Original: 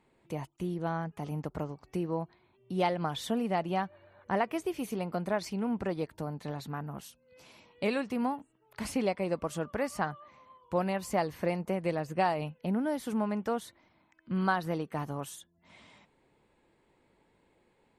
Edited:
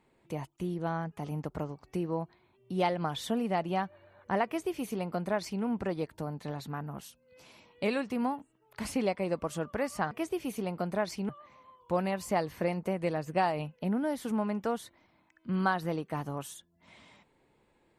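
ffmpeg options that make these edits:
ffmpeg -i in.wav -filter_complex "[0:a]asplit=3[link_01][link_02][link_03];[link_01]atrim=end=10.112[link_04];[link_02]atrim=start=4.448:end=5.632[link_05];[link_03]atrim=start=10.108[link_06];[link_04][link_05]acrossfade=duration=0.004:curve1=hsin:curve2=hsin[link_07];[link_07][link_06]acrossfade=duration=0.004:curve1=hsin:curve2=hsin" out.wav

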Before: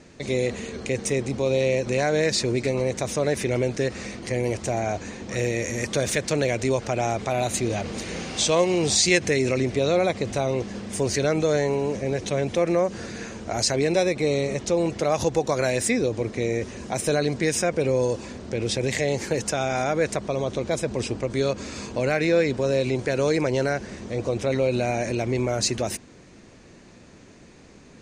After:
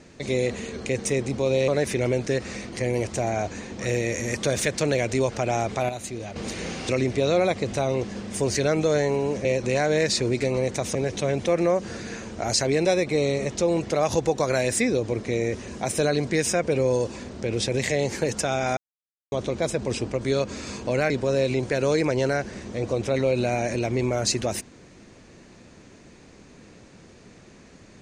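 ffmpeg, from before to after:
ffmpeg -i in.wav -filter_complex "[0:a]asplit=10[link_01][link_02][link_03][link_04][link_05][link_06][link_07][link_08][link_09][link_10];[link_01]atrim=end=1.682[link_11];[link_02]atrim=start=3.178:end=7.392[link_12];[link_03]atrim=start=7.388:end=7.862,asetpts=PTS-STARTPTS,volume=-8.5dB[link_13];[link_04]atrim=start=7.858:end=8.392[link_14];[link_05]atrim=start=9.478:end=12.042[link_15];[link_06]atrim=start=1.678:end=3.182[link_16];[link_07]atrim=start=12.038:end=19.86,asetpts=PTS-STARTPTS,afade=type=out:start_time=7.818:duration=0.004:curve=hsin[link_17];[link_08]atrim=start=19.86:end=20.41,asetpts=PTS-STARTPTS,volume=0[link_18];[link_09]atrim=start=20.41:end=22.192,asetpts=PTS-STARTPTS,afade=type=in:duration=0.004:curve=hsin[link_19];[link_10]atrim=start=22.458[link_20];[link_11][link_12]acrossfade=duration=0.004:curve1=hsin:curve2=hsin[link_21];[link_21][link_13]acrossfade=duration=0.004:curve1=hsin:curve2=hsin[link_22];[link_22][link_14]acrossfade=duration=0.004:curve1=hsin:curve2=hsin[link_23];[link_23][link_15]acrossfade=duration=0.004:curve1=hsin:curve2=hsin[link_24];[link_24][link_16]acrossfade=duration=0.004:curve1=hsin:curve2=hsin[link_25];[link_17][link_18][link_19]concat=n=3:v=0:a=1[link_26];[link_25][link_26]acrossfade=duration=0.004:curve1=hsin:curve2=hsin[link_27];[link_27][link_20]acrossfade=duration=0.004:curve1=hsin:curve2=hsin" out.wav

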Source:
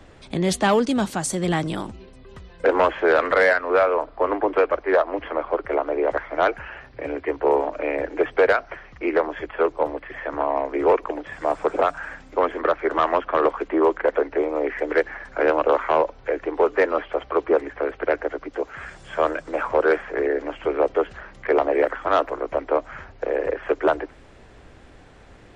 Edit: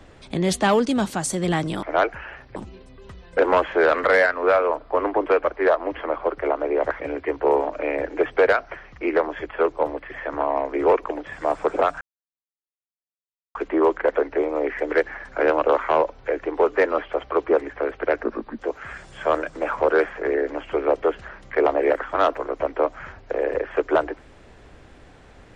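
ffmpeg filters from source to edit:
ffmpeg -i in.wav -filter_complex "[0:a]asplit=8[link_01][link_02][link_03][link_04][link_05][link_06][link_07][link_08];[link_01]atrim=end=1.832[link_09];[link_02]atrim=start=6.268:end=7.002[link_10];[link_03]atrim=start=1.828:end=6.272[link_11];[link_04]atrim=start=6.998:end=12.01,asetpts=PTS-STARTPTS,afade=type=out:start_time=5.008:duration=0.004:curve=hsin[link_12];[link_05]atrim=start=12.01:end=13.55,asetpts=PTS-STARTPTS,volume=0[link_13];[link_06]atrim=start=13.55:end=18.234,asetpts=PTS-STARTPTS,afade=type=in:duration=0.004:curve=hsin[link_14];[link_07]atrim=start=18.23:end=18.51,asetpts=PTS-STARTPTS,asetrate=34398,aresample=44100[link_15];[link_08]atrim=start=18.506[link_16];[link_09][link_10]acrossfade=duration=0.004:curve1=hsin:curve2=hsin[link_17];[link_17][link_11]acrossfade=duration=0.004:curve1=hsin:curve2=hsin[link_18];[link_12][link_13][link_14]concat=n=3:v=0:a=1[link_19];[link_18][link_19]acrossfade=duration=0.004:curve1=hsin:curve2=hsin[link_20];[link_20][link_15]acrossfade=duration=0.004:curve1=hsin:curve2=hsin[link_21];[link_21][link_16]acrossfade=duration=0.004:curve1=hsin:curve2=hsin" out.wav

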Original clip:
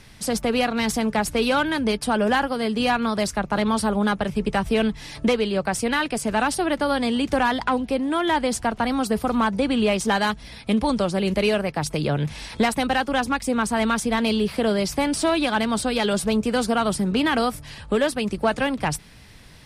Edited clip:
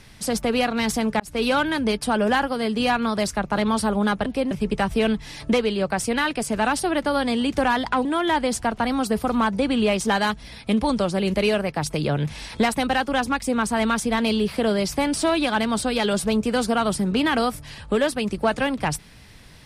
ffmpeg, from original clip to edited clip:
ffmpeg -i in.wav -filter_complex "[0:a]asplit=5[link_01][link_02][link_03][link_04][link_05];[link_01]atrim=end=1.2,asetpts=PTS-STARTPTS,afade=type=out:start_time=1.196:duration=0.004:curve=hsin[link_06];[link_02]atrim=start=1.2:end=4.262,asetpts=PTS-STARTPTS,afade=type=in:duration=0.25[link_07];[link_03]atrim=start=7.798:end=8.052[link_08];[link_04]atrim=start=4.258:end=7.802[link_09];[link_05]atrim=start=8.048[link_10];[link_06][link_07]concat=n=2:v=0:a=1[link_11];[link_11][link_08]acrossfade=duration=0.004:curve1=hsin:curve2=hsin[link_12];[link_12][link_09]acrossfade=duration=0.004:curve1=hsin:curve2=hsin[link_13];[link_13][link_10]acrossfade=duration=0.004:curve1=hsin:curve2=hsin" out.wav

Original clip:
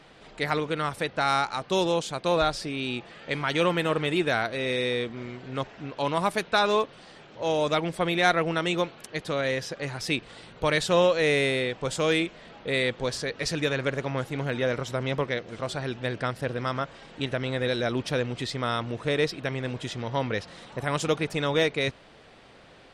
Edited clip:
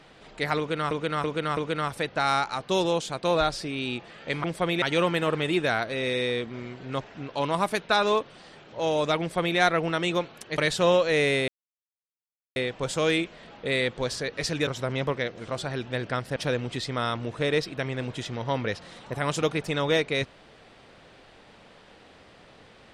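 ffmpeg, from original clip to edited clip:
ffmpeg -i in.wav -filter_complex "[0:a]asplit=10[link_01][link_02][link_03][link_04][link_05][link_06][link_07][link_08][link_09][link_10];[link_01]atrim=end=0.912[link_11];[link_02]atrim=start=0.578:end=0.912[link_12];[link_03]atrim=start=0.578:end=0.912[link_13];[link_04]atrim=start=0.578:end=3.452[link_14];[link_05]atrim=start=7.828:end=8.212[link_15];[link_06]atrim=start=3.448:end=9.212[link_16];[link_07]atrim=start=10.678:end=11.58,asetpts=PTS-STARTPTS,afade=type=out:start_time=0.898:duration=0.004:curve=hsin,apad=pad_dur=1.08[link_17];[link_08]atrim=start=11.58:end=13.692,asetpts=PTS-STARTPTS,afade=type=in:duration=0.004:curve=hsin[link_18];[link_09]atrim=start=14.778:end=16.472[link_19];[link_10]atrim=start=18.018[link_20];[link_11][link_12]acrossfade=duration=0.004:curve1=hsin:curve2=hsin[link_21];[link_21][link_13]acrossfade=duration=0.004:curve1=hsin:curve2=hsin[link_22];[link_22][link_14]acrossfade=duration=0.004:curve1=hsin:curve2=hsin[link_23];[link_23][link_15]acrossfade=duration=0.004:curve1=hsin:curve2=hsin[link_24];[link_24][link_16]acrossfade=duration=0.004:curve1=hsin:curve2=hsin[link_25];[link_17][link_18]concat=n=2:v=0:a=1[link_26];[link_25][link_26]acrossfade=duration=0.004:curve1=hsin:curve2=hsin[link_27];[link_27][link_19]acrossfade=duration=0.004:curve1=hsin:curve2=hsin[link_28];[link_28][link_20]acrossfade=duration=0.004:curve1=hsin:curve2=hsin" out.wav

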